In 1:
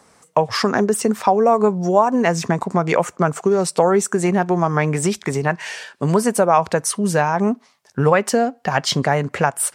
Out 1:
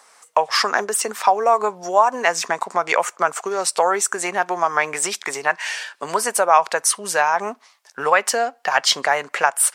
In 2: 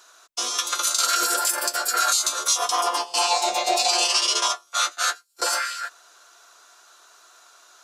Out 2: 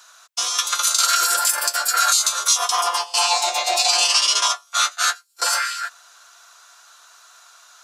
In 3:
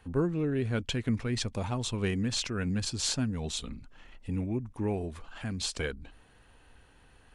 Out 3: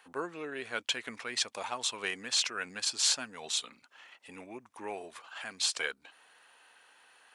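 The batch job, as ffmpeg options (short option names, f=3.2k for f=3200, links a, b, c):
-af "highpass=820,volume=4dB"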